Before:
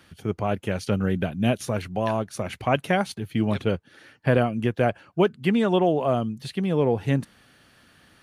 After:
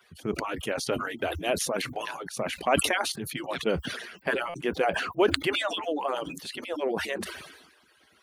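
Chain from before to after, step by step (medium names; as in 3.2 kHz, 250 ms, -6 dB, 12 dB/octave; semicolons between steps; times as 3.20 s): harmonic-percussive separation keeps percussive; high-pass 73 Hz 24 dB/octave; bass shelf 400 Hz -4 dB; buffer glitch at 4.49 s, samples 256, times 8; decay stretcher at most 51 dB/s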